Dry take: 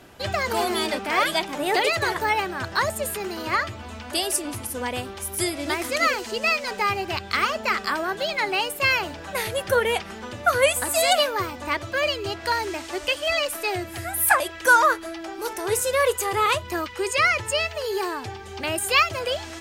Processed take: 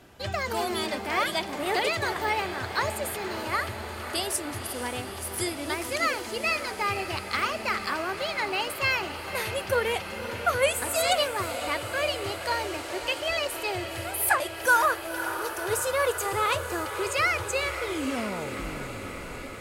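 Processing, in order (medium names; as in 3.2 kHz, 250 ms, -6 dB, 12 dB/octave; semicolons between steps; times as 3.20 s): tape stop on the ending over 2.25 s; peaking EQ 66 Hz +3 dB 2.4 oct; echo that smears into a reverb 531 ms, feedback 77%, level -11 dB; trim -5 dB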